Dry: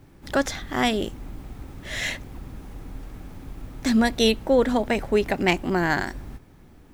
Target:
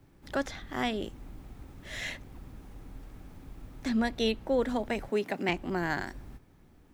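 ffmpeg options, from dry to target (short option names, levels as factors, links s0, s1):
-filter_complex "[0:a]asettb=1/sr,asplit=3[s0][s1][s2];[s0]atrim=end=5.094[s3];[s1]atrim=start=5.09:end=5.49,asetpts=PTS-STARTPTS,afade=t=in:d=0.004:c=qsin,afade=t=out:st=0.396:d=0.004:c=qsin,highpass=f=150:w=0.5412,highpass=f=150:w=1.3066[s4];[s2]atrim=start=5.486[s5];[s3][s4]acrossfade=d=0.004:c1=hsin:c2=qsin[s6];[s6][s5]acrossfade=d=0.004:c1=qsin:c2=hsin,acrossover=split=200|4600[s7][s8][s9];[s9]alimiter=level_in=2.51:limit=0.0631:level=0:latency=1:release=332,volume=0.398[s10];[s7][s8][s10]amix=inputs=3:normalize=0,volume=0.376"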